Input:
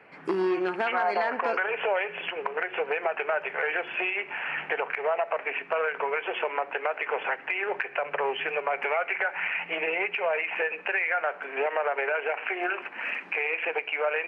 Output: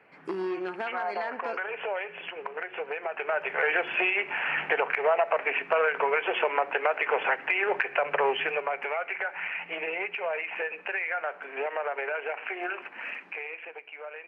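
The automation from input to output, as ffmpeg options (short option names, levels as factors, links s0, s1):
-af "volume=1.41,afade=t=in:st=3.08:d=0.61:silence=0.375837,afade=t=out:st=8.29:d=0.5:silence=0.446684,afade=t=out:st=12.97:d=0.74:silence=0.316228"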